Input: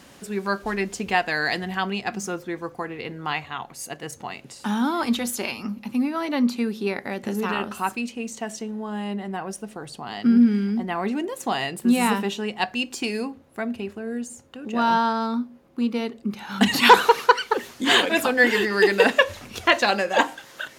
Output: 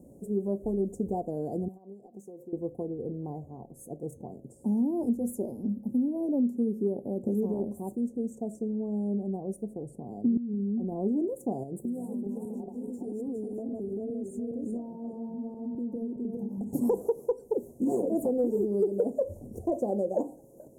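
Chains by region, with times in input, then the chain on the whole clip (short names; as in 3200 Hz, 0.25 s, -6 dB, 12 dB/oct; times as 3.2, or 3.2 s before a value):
1.68–2.53 HPF 580 Hz 6 dB/oct + compressor 12:1, threshold -37 dBFS
10.37–10.92 median filter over 5 samples + compressor 16:1, threshold -26 dBFS
11.63–16.73 regenerating reverse delay 0.206 s, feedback 49%, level -2 dB + compressor 16:1, threshold -29 dBFS
whole clip: inverse Chebyshev band-stop 1300–3600 Hz, stop band 60 dB; resonant high shelf 2500 Hz -12 dB, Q 3; compressor 6:1, threshold -23 dBFS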